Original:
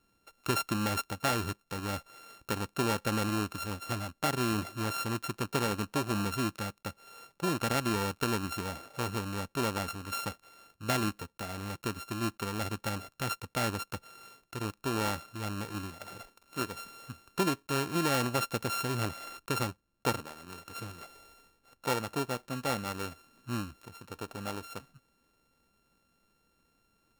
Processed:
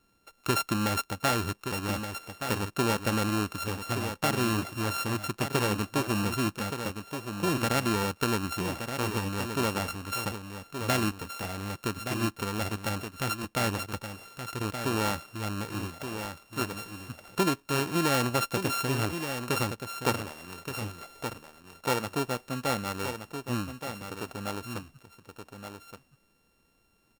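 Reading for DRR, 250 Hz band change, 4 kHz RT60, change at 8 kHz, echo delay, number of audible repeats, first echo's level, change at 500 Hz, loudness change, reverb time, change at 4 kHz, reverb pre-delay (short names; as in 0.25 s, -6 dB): none, +3.5 dB, none, +3.5 dB, 1.173 s, 1, -8.0 dB, +3.5 dB, +3.0 dB, none, +3.5 dB, none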